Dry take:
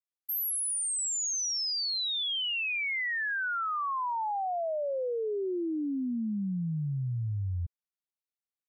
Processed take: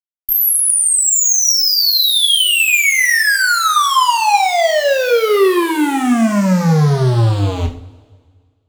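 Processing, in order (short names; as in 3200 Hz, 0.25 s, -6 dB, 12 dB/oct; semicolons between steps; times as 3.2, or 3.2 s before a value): added harmonics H 3 -15 dB, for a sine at -28 dBFS; fuzz box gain 59 dB, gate -59 dBFS; two-slope reverb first 0.37 s, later 1.8 s, from -20 dB, DRR 2 dB; gain -1.5 dB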